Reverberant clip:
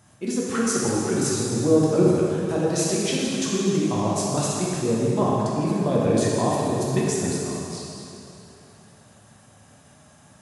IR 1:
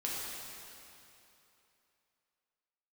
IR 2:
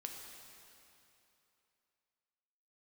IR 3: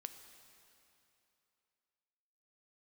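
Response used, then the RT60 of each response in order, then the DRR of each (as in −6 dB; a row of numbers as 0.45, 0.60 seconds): 1; 3.0, 3.0, 2.9 seconds; −5.5, 1.5, 8.0 decibels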